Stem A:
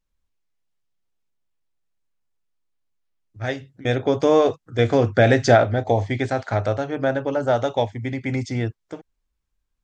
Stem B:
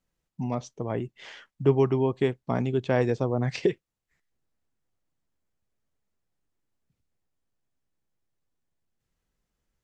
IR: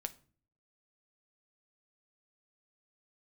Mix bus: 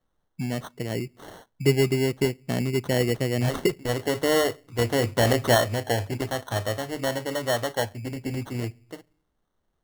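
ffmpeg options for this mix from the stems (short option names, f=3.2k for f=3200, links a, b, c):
-filter_complex "[0:a]equalizer=f=4.8k:w=5.4:g=-14.5,volume=-9dB,asplit=2[a][b];[b]volume=-4.5dB[c];[1:a]equalizer=f=1.1k:w=1.5:g=-12,volume=0dB,asplit=2[d][e];[e]volume=-11dB[f];[2:a]atrim=start_sample=2205[g];[c][f]amix=inputs=2:normalize=0[h];[h][g]afir=irnorm=-1:irlink=0[i];[a][d][i]amix=inputs=3:normalize=0,highshelf=f=4.4k:g=7.5,acrusher=samples=18:mix=1:aa=0.000001"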